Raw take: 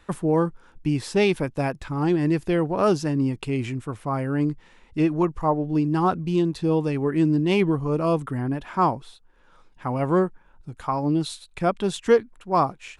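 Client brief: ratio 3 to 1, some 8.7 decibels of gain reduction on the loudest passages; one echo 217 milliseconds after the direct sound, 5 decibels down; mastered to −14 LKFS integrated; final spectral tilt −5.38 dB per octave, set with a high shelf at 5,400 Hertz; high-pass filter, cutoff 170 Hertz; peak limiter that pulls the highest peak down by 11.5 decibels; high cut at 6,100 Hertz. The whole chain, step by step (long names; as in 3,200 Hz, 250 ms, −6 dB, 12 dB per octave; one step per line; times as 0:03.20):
high-pass filter 170 Hz
low-pass filter 6,100 Hz
high-shelf EQ 5,400 Hz +7.5 dB
downward compressor 3 to 1, threshold −23 dBFS
brickwall limiter −24 dBFS
single-tap delay 217 ms −5 dB
level +19 dB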